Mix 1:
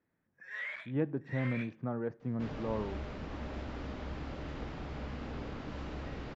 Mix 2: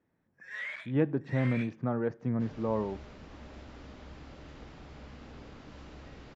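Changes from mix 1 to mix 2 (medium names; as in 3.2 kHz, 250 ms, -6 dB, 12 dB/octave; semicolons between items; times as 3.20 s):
speech +5.0 dB; second sound -7.5 dB; master: remove low-pass 3.2 kHz 6 dB/octave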